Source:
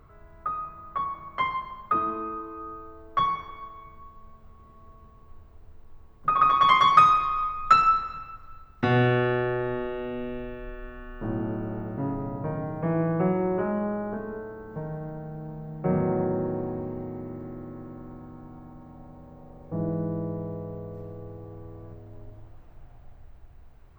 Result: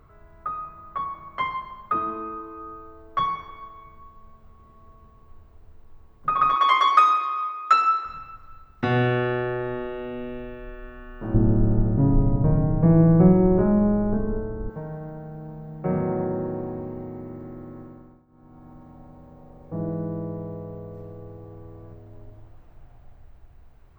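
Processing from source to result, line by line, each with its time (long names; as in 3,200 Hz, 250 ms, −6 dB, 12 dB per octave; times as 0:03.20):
0:06.56–0:08.05: Butterworth high-pass 280 Hz 96 dB per octave
0:11.34–0:14.70: spectral tilt −4.5 dB per octave
0:17.80–0:18.72: duck −19.5 dB, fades 0.45 s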